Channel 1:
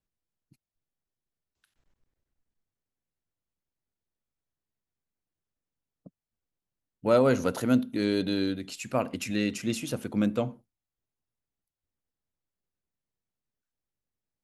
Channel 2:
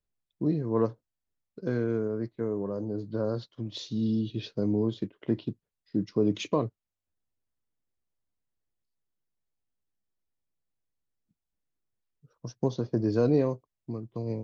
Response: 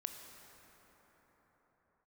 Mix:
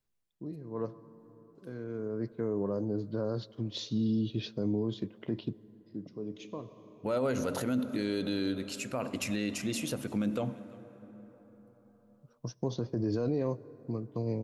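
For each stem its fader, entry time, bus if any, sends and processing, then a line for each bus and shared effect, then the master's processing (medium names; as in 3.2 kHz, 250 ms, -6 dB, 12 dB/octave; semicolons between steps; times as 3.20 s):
-2.5 dB, 0.00 s, send -7.5 dB, echo send -23.5 dB, de-hum 45.84 Hz, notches 7
-0.5 dB, 0.00 s, send -16.5 dB, no echo send, auto duck -21 dB, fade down 0.35 s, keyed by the first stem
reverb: on, pre-delay 18 ms
echo: delay 340 ms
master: peak limiter -22.5 dBFS, peak gain reduction 10.5 dB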